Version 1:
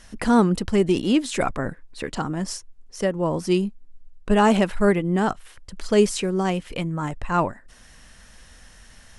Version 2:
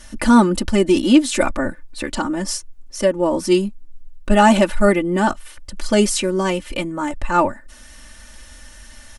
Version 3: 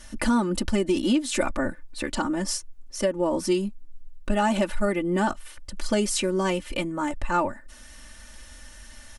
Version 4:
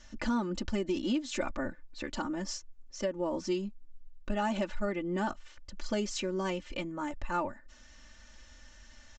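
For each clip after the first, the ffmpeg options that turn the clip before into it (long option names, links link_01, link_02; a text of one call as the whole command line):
ffmpeg -i in.wav -af "lowpass=frequency=4000:poles=1,aemphasis=mode=production:type=50fm,aecho=1:1:3.4:0.93,volume=3dB" out.wav
ffmpeg -i in.wav -af "acompressor=threshold=-15dB:ratio=6,volume=-4dB" out.wav
ffmpeg -i in.wav -af "aresample=16000,aresample=44100,volume=-8.5dB" out.wav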